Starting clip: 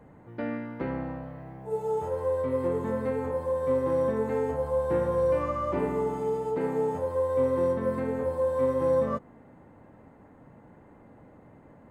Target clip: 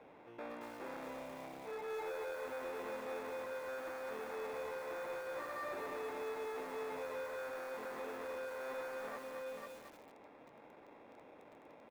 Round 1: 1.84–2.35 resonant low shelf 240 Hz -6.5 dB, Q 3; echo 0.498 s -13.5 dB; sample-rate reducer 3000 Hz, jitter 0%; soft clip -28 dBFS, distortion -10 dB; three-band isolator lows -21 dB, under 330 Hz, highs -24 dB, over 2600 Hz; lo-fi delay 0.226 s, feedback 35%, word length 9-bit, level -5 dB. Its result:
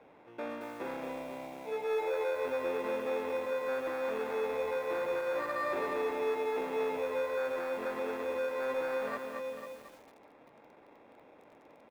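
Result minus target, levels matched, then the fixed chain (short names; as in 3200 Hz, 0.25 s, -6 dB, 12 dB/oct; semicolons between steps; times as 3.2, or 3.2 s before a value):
soft clip: distortion -6 dB
1.84–2.35 resonant low shelf 240 Hz -6.5 dB, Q 3; echo 0.498 s -13.5 dB; sample-rate reducer 3000 Hz, jitter 0%; soft clip -40 dBFS, distortion -4 dB; three-band isolator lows -21 dB, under 330 Hz, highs -24 dB, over 2600 Hz; lo-fi delay 0.226 s, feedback 35%, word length 9-bit, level -5 dB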